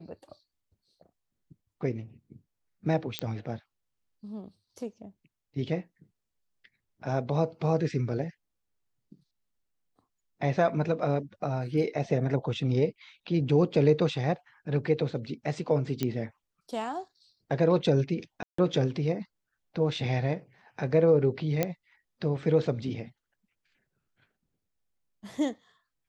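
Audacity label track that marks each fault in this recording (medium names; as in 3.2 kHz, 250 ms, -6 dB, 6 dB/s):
3.190000	3.190000	pop -14 dBFS
16.030000	16.030000	pop -15 dBFS
18.430000	18.580000	dropout 154 ms
21.630000	21.630000	pop -11 dBFS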